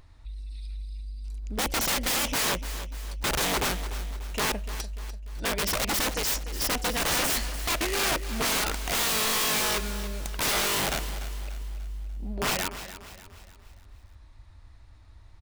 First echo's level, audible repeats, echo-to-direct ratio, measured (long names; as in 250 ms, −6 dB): −13.0 dB, 4, −12.0 dB